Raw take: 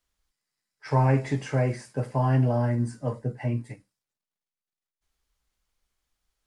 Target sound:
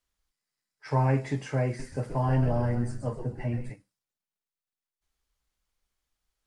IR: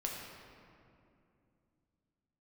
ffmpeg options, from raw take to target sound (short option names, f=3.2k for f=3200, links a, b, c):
-filter_complex "[0:a]asettb=1/sr,asplit=3[a][b][c];[a]atrim=end=1.664[d];[b]atrim=start=1.66:end=3.7,asetpts=PTS-STARTPTS,afade=t=in:d=0.004:c=qsin,afade=t=out:st=2.036:d=0.004:c=qsin,asplit=5[e][f][g][h][i];[f]adelay=128,afreqshift=-110,volume=-7dB[j];[g]adelay=256,afreqshift=-220,volume=-16.6dB[k];[h]adelay=384,afreqshift=-330,volume=-26.3dB[l];[i]adelay=512,afreqshift=-440,volume=-35.9dB[m];[e][j][k][l][m]amix=inputs=5:normalize=0,atrim=end_sample=89964[n];[c]atrim=start=3.696[o];[d][n]acrossfade=d=0.004:c1=hsin:c2=qsin[p];[p][o]acrossfade=d=0.004:c1=qsin:c2=hsin,volume=-3dB"